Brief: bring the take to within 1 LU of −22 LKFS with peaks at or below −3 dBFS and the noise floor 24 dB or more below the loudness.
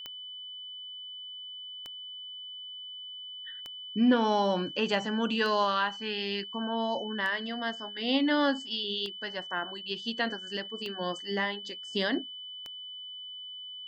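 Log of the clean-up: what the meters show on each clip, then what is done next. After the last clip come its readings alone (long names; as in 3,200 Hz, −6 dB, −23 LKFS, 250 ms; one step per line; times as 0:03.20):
number of clicks 8; interfering tone 3,000 Hz; level of the tone −40 dBFS; integrated loudness −31.5 LKFS; sample peak −13.5 dBFS; target loudness −22.0 LKFS
→ click removal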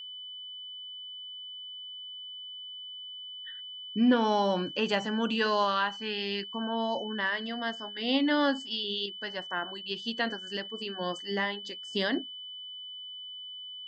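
number of clicks 0; interfering tone 3,000 Hz; level of the tone −40 dBFS
→ notch filter 3,000 Hz, Q 30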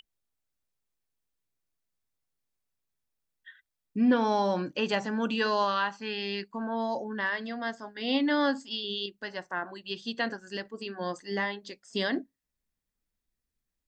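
interfering tone none found; integrated loudness −30.5 LKFS; sample peak −14.0 dBFS; target loudness −22.0 LKFS
→ level +8.5 dB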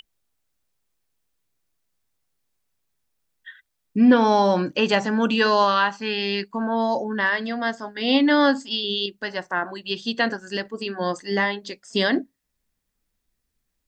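integrated loudness −22.0 LKFS; sample peak −5.5 dBFS; background noise floor −77 dBFS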